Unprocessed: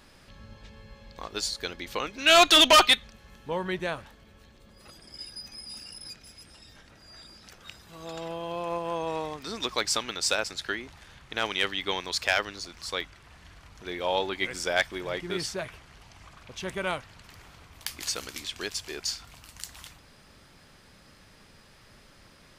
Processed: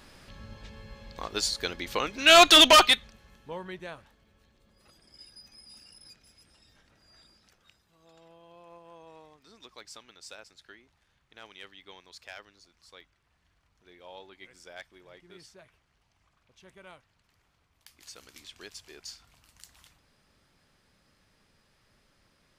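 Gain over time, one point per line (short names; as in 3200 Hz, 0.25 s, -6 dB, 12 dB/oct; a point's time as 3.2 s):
2.62 s +2 dB
3.76 s -10 dB
7.23 s -10 dB
7.98 s -20 dB
17.87 s -20 dB
18.4 s -12 dB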